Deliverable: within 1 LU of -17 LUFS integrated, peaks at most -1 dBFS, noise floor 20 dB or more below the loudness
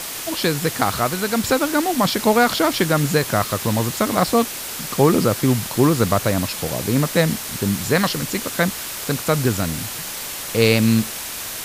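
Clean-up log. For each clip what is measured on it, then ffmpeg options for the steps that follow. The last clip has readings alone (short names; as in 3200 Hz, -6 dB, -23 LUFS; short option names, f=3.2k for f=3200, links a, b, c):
noise floor -30 dBFS; noise floor target -40 dBFS; loudness -19.5 LUFS; peak -2.0 dBFS; loudness target -17.0 LUFS
-> -af "afftdn=nr=10:nf=-30"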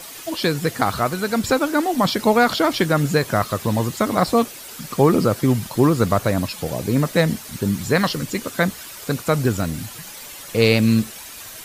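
noise floor -37 dBFS; noise floor target -40 dBFS
-> -af "afftdn=nr=6:nf=-37"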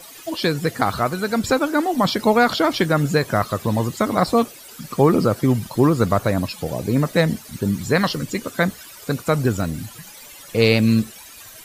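noise floor -42 dBFS; loudness -20.0 LUFS; peak -3.0 dBFS; loudness target -17.0 LUFS
-> -af "volume=3dB,alimiter=limit=-1dB:level=0:latency=1"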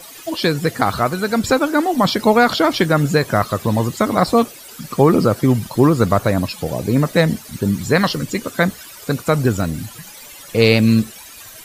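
loudness -17.0 LUFS; peak -1.0 dBFS; noise floor -39 dBFS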